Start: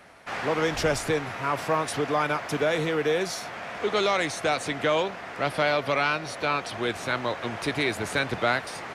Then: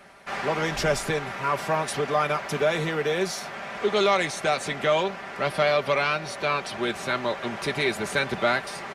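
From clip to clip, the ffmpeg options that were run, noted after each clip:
ffmpeg -i in.wav -af "aecho=1:1:5.1:0.53" out.wav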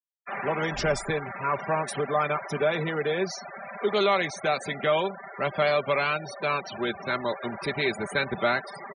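ffmpeg -i in.wav -af "afftfilt=real='re*gte(hypot(re,im),0.0355)':imag='im*gte(hypot(re,im),0.0355)':win_size=1024:overlap=0.75,volume=-1.5dB" out.wav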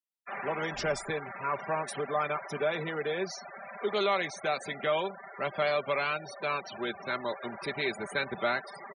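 ffmpeg -i in.wav -af "lowshelf=frequency=150:gain=-8,volume=-4.5dB" out.wav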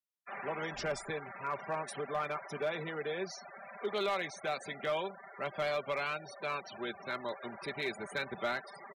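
ffmpeg -i in.wav -af "asoftclip=type=hard:threshold=-22dB,volume=-5dB" out.wav

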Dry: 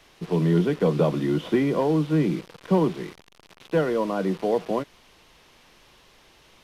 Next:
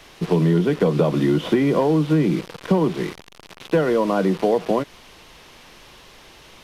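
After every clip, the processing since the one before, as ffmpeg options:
ffmpeg -i in.wav -af "acompressor=threshold=-24dB:ratio=4,volume=9dB" out.wav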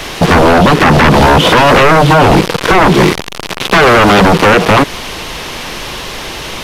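ffmpeg -i in.wav -filter_complex "[0:a]asplit=2[link_01][link_02];[link_02]alimiter=limit=-13.5dB:level=0:latency=1,volume=0dB[link_03];[link_01][link_03]amix=inputs=2:normalize=0,aeval=exprs='0.75*sin(PI/2*5.01*val(0)/0.75)':channel_layout=same" out.wav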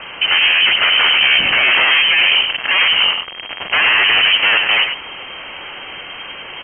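ffmpeg -i in.wav -filter_complex "[0:a]asplit=2[link_01][link_02];[link_02]aecho=0:1:101:0.447[link_03];[link_01][link_03]amix=inputs=2:normalize=0,lowpass=frequency=2700:width_type=q:width=0.5098,lowpass=frequency=2700:width_type=q:width=0.6013,lowpass=frequency=2700:width_type=q:width=0.9,lowpass=frequency=2700:width_type=q:width=2.563,afreqshift=-3200,volume=-7.5dB" out.wav

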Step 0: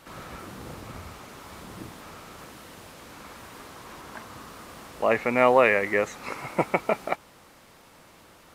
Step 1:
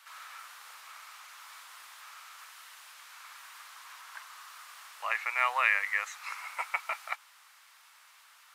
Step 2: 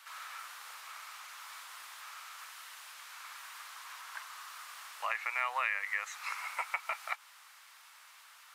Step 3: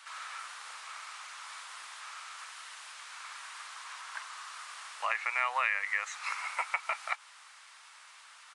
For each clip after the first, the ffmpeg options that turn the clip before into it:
ffmpeg -i in.wav -af "highpass=frequency=1100:width=0.5412,highpass=frequency=1100:width=1.3066,volume=-2dB" out.wav
ffmpeg -i in.wav -af "acompressor=threshold=-34dB:ratio=2.5,volume=1.5dB" out.wav
ffmpeg -i in.wav -af "aresample=22050,aresample=44100,volume=3dB" out.wav

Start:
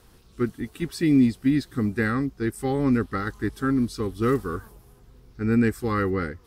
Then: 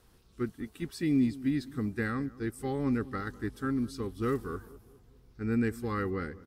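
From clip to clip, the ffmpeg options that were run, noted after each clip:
ffmpeg -i in.wav -filter_complex "[0:a]asplit=2[link_01][link_02];[link_02]adelay=202,lowpass=frequency=970:poles=1,volume=-18dB,asplit=2[link_03][link_04];[link_04]adelay=202,lowpass=frequency=970:poles=1,volume=0.47,asplit=2[link_05][link_06];[link_06]adelay=202,lowpass=frequency=970:poles=1,volume=0.47,asplit=2[link_07][link_08];[link_08]adelay=202,lowpass=frequency=970:poles=1,volume=0.47[link_09];[link_01][link_03][link_05][link_07][link_09]amix=inputs=5:normalize=0,volume=-8dB" out.wav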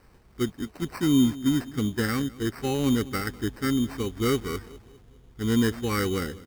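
ffmpeg -i in.wav -af "acrusher=samples=13:mix=1:aa=0.000001,volume=6dB" out.wav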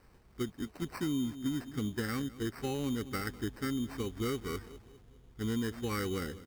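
ffmpeg -i in.wav -af "acompressor=threshold=-26dB:ratio=4,volume=-5dB" out.wav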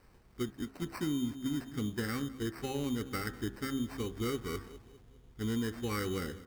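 ffmpeg -i in.wav -af "bandreject=frequency=66.39:width_type=h:width=4,bandreject=frequency=132.78:width_type=h:width=4,bandreject=frequency=199.17:width_type=h:width=4,bandreject=frequency=265.56:width_type=h:width=4,bandreject=frequency=331.95:width_type=h:width=4,bandreject=frequency=398.34:width_type=h:width=4,bandreject=frequency=464.73:width_type=h:width=4,bandreject=frequency=531.12:width_type=h:width=4,bandreject=frequency=597.51:width_type=h:width=4,bandreject=frequency=663.9:width_type=h:width=4,bandreject=frequency=730.29:width_type=h:width=4,bandreject=frequency=796.68:width_type=h:width=4,bandreject=frequency=863.07:width_type=h:width=4,bandreject=frequency=929.46:width_type=h:width=4,bandreject=frequency=995.85:width_type=h:width=4,bandreject=frequency=1062.24:width_type=h:width=4,bandreject=frequency=1128.63:width_type=h:width=4,bandreject=frequency=1195.02:width_type=h:width=4,bandreject=frequency=1261.41:width_type=h:width=4,bandreject=frequency=1327.8:width_type=h:width=4,bandreject=frequency=1394.19:width_type=h:width=4,bandreject=frequency=1460.58:width_type=h:width=4,bandreject=frequency=1526.97:width_type=h:width=4,bandreject=frequency=1593.36:width_type=h:width=4,bandreject=frequency=1659.75:width_type=h:width=4,bandreject=frequency=1726.14:width_type=h:width=4,bandreject=frequency=1792.53:width_type=h:width=4,bandreject=frequency=1858.92:width_type=h:width=4,bandreject=frequency=1925.31:width_type=h:width=4" out.wav

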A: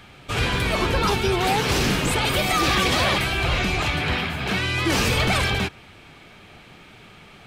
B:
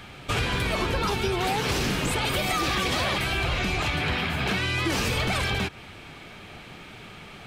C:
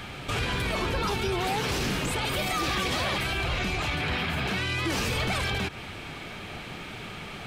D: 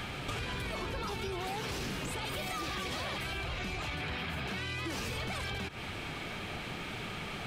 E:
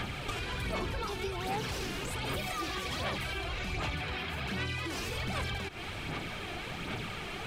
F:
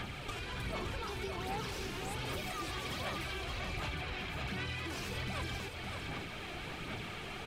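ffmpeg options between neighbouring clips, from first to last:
ffmpeg -i in.wav -af "acompressor=threshold=-26dB:ratio=6,volume=3dB" out.wav
ffmpeg -i in.wav -af "alimiter=level_in=1dB:limit=-24dB:level=0:latency=1:release=62,volume=-1dB,volume=4.5dB" out.wav
ffmpeg -i in.wav -af "acompressor=threshold=-35dB:ratio=5" out.wav
ffmpeg -i in.wav -af "aphaser=in_gain=1:out_gain=1:delay=2.9:decay=0.42:speed=1.3:type=sinusoidal" out.wav
ffmpeg -i in.wav -af "aecho=1:1:566:0.531,volume=-5dB" out.wav

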